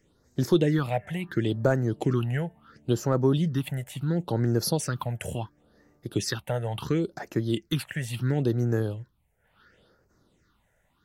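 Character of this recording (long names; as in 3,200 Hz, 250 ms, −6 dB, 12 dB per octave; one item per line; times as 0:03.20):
phaser sweep stages 6, 0.72 Hz, lowest notch 300–3,300 Hz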